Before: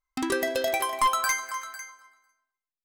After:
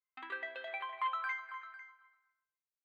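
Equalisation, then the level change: running mean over 8 samples; HPF 1500 Hz 12 dB/oct; air absorption 330 m; -3.0 dB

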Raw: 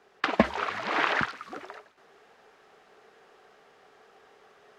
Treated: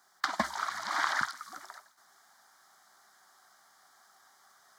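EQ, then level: tilt +3 dB/oct; high shelf 3500 Hz +7.5 dB; fixed phaser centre 1100 Hz, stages 4; -3.5 dB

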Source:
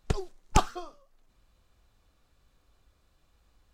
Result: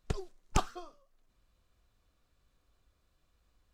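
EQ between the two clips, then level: notch 830 Hz, Q 12; -6.0 dB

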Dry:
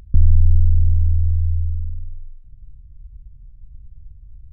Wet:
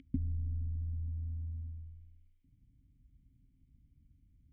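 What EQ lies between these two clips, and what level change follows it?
vowel filter i; +7.0 dB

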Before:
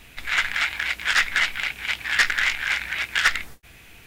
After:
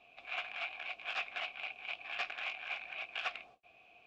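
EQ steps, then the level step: vowel filter a; air absorption 82 m; bell 1300 Hz -8.5 dB 0.93 oct; +2.5 dB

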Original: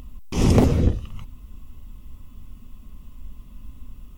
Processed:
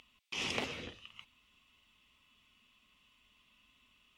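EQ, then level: band-pass 2800 Hz, Q 2; +1.0 dB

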